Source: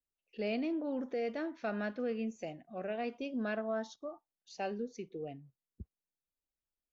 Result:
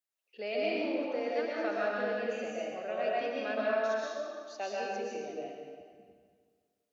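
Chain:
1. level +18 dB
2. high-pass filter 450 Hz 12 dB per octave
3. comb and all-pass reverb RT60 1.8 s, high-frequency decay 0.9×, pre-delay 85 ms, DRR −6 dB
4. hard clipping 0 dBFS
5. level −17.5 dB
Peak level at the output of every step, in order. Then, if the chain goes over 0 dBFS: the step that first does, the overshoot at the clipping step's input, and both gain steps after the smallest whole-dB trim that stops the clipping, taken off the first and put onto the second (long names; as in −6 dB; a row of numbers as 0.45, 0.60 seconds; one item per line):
−6.0, −9.5, −2.0, −2.0, −19.5 dBFS
no step passes full scale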